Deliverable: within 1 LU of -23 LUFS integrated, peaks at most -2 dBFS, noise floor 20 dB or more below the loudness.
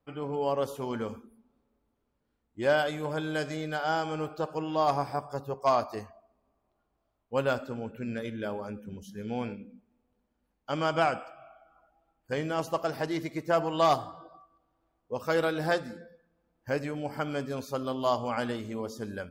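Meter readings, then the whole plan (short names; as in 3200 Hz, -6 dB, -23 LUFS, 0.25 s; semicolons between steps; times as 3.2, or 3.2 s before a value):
loudness -31.0 LUFS; peak -15.0 dBFS; loudness target -23.0 LUFS
-> gain +8 dB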